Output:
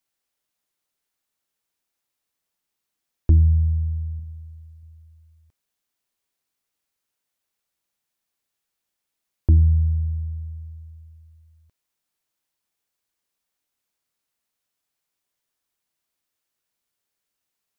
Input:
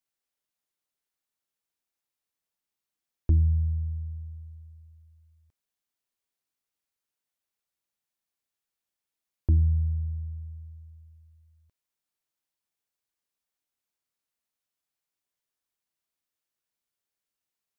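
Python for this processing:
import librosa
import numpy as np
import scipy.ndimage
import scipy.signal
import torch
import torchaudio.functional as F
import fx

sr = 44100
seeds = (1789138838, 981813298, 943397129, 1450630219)

y = fx.room_flutter(x, sr, wall_m=7.2, rt60_s=0.34, at=(4.15, 4.83))
y = y * librosa.db_to_amplitude(6.5)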